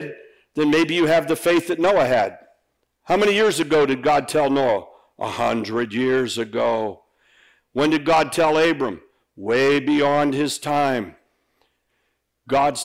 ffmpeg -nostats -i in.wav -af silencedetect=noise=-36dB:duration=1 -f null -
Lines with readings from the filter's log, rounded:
silence_start: 11.10
silence_end: 12.49 | silence_duration: 1.40